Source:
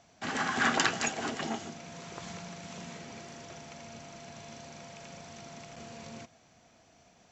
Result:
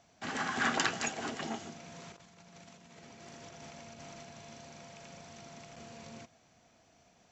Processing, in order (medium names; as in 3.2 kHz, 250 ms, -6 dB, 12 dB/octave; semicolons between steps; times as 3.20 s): 2.12–4.23 s: compressor with a negative ratio -48 dBFS, ratio -0.5; trim -3.5 dB